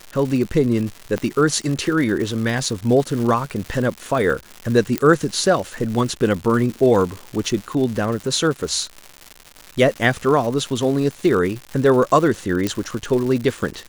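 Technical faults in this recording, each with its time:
crackle 250/s -26 dBFS
1.18 pop -11 dBFS
4.98 pop -5 dBFS
12.67 pop -7 dBFS

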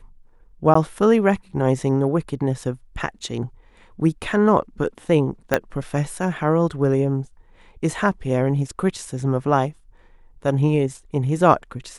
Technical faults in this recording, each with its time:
0.74–0.75 gap 14 ms
5.54 pop -4 dBFS

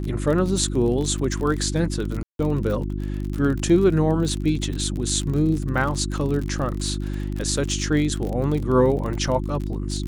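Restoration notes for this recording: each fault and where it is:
crackle 38/s -27 dBFS
hum 50 Hz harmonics 7 -27 dBFS
2.23–2.39 gap 0.162 s

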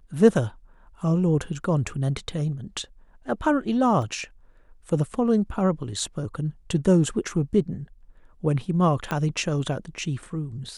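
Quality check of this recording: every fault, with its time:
4.02 gap 2.4 ms
9.11 pop -13 dBFS

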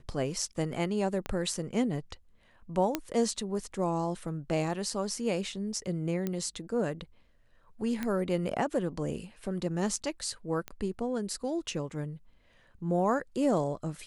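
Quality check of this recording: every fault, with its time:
1.26 pop -20 dBFS
2.95 pop -13 dBFS
6.27 pop -19 dBFS
8.03 pop -19 dBFS
10.68 pop -22 dBFS

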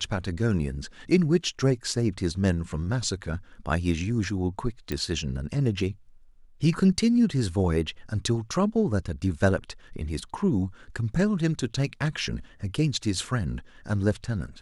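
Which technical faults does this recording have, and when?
4.92 pop -16 dBFS

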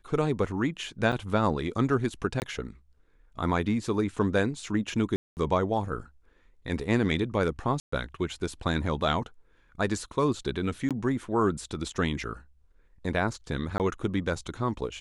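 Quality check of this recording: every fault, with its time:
1.12–1.13 gap 5.9 ms
2.4–2.42 gap 19 ms
5.16–5.37 gap 0.209 s
7.8–7.92 gap 0.124 s
10.89–10.91 gap 17 ms
13.78–13.8 gap 18 ms

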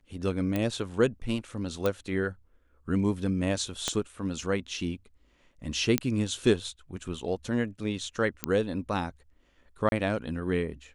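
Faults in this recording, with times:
0.56 pop -16 dBFS
1.86 pop -14 dBFS
3.88 pop -13 dBFS
5.98 pop -8 dBFS
8.44 pop -10 dBFS
9.89–9.92 gap 31 ms

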